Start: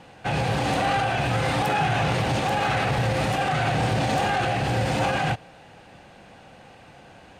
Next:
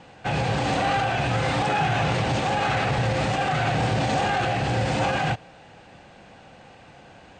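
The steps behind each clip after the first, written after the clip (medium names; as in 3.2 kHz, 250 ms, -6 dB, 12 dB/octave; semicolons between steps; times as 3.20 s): steep low-pass 8.6 kHz 96 dB/octave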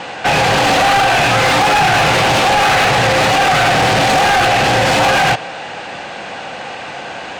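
overdrive pedal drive 24 dB, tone 6.4 kHz, clips at -12.5 dBFS; trim +6.5 dB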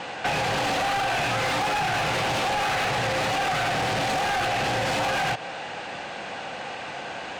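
compression, threshold -16 dBFS, peak gain reduction 6 dB; trim -7.5 dB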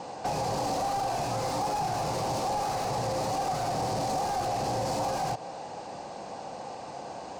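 high-order bell 2.2 kHz -14.5 dB; trim -3 dB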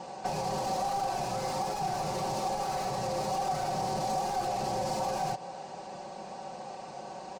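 comb 5.3 ms; trim -4 dB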